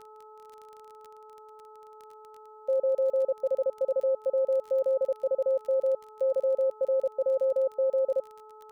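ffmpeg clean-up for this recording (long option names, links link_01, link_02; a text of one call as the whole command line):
ffmpeg -i in.wav -af "adeclick=threshold=4,bandreject=frequency=431.3:width_type=h:width=4,bandreject=frequency=862.6:width_type=h:width=4,bandreject=frequency=1293.9:width_type=h:width=4" out.wav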